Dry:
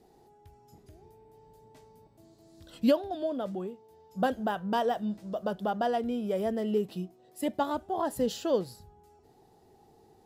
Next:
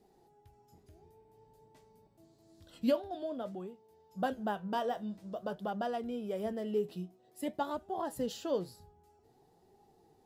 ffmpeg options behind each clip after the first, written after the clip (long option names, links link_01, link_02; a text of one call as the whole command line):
ffmpeg -i in.wav -af "flanger=delay=4.9:depth=7.1:regen=67:speed=0.51:shape=sinusoidal,volume=-1.5dB" out.wav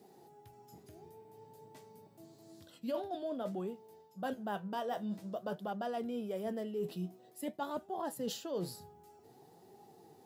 ffmpeg -i in.wav -af "highpass=frequency=110:width=0.5412,highpass=frequency=110:width=1.3066,highshelf=frequency=12000:gain=7.5,areverse,acompressor=threshold=-42dB:ratio=6,areverse,volume=6.5dB" out.wav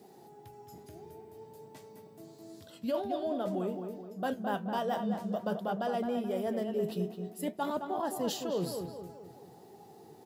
ffmpeg -i in.wav -filter_complex "[0:a]asplit=2[link_01][link_02];[link_02]adelay=214,lowpass=frequency=2000:poles=1,volume=-6dB,asplit=2[link_03][link_04];[link_04]adelay=214,lowpass=frequency=2000:poles=1,volume=0.47,asplit=2[link_05][link_06];[link_06]adelay=214,lowpass=frequency=2000:poles=1,volume=0.47,asplit=2[link_07][link_08];[link_08]adelay=214,lowpass=frequency=2000:poles=1,volume=0.47,asplit=2[link_09][link_10];[link_10]adelay=214,lowpass=frequency=2000:poles=1,volume=0.47,asplit=2[link_11][link_12];[link_12]adelay=214,lowpass=frequency=2000:poles=1,volume=0.47[link_13];[link_01][link_03][link_05][link_07][link_09][link_11][link_13]amix=inputs=7:normalize=0,volume=4.5dB" out.wav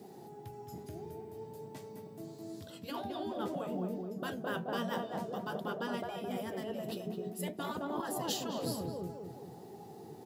ffmpeg -i in.wav -af "afftfilt=real='re*lt(hypot(re,im),0.1)':imag='im*lt(hypot(re,im),0.1)':win_size=1024:overlap=0.75,highpass=77,lowshelf=frequency=310:gain=7,volume=1.5dB" out.wav